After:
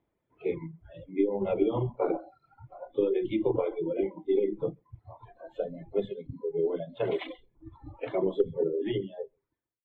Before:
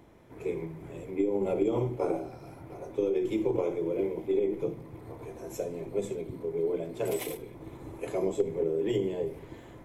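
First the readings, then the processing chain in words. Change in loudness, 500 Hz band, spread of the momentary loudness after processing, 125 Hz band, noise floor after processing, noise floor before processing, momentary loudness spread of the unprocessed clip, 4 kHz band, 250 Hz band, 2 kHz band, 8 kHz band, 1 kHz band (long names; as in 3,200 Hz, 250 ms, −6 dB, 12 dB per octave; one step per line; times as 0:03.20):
+0.5 dB, +0.5 dB, 18 LU, −0.5 dB, −82 dBFS, −49 dBFS, 15 LU, +1.0 dB, 0.0 dB, +0.5 dB, below −30 dB, +1.0 dB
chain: fade-out on the ending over 1.08 s
elliptic low-pass filter 3,600 Hz, stop band 40 dB
reverb reduction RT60 1.2 s
slap from a distant wall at 23 metres, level −16 dB
noise reduction from a noise print of the clip's start 24 dB
level +3.5 dB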